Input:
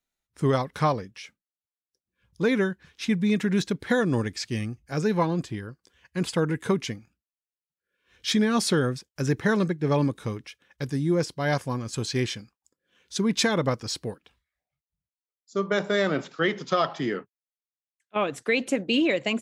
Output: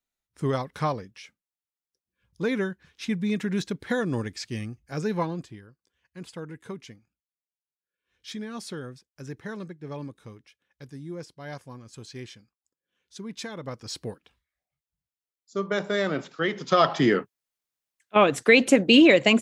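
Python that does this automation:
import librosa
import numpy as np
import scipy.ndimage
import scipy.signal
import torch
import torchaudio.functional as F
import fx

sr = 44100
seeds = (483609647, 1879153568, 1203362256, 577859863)

y = fx.gain(x, sr, db=fx.line((5.22, -3.5), (5.69, -13.5), (13.59, -13.5), (14.01, -2.0), (16.5, -2.0), (16.95, 7.5)))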